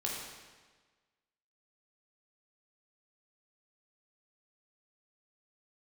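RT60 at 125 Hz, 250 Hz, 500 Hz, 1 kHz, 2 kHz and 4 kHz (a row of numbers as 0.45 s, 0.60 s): 1.4 s, 1.4 s, 1.4 s, 1.4 s, 1.3 s, 1.2 s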